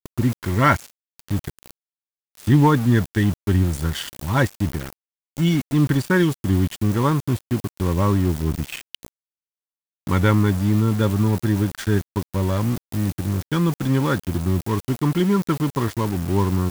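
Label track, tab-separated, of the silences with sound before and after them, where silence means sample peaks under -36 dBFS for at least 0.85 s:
9.080000	10.070000	silence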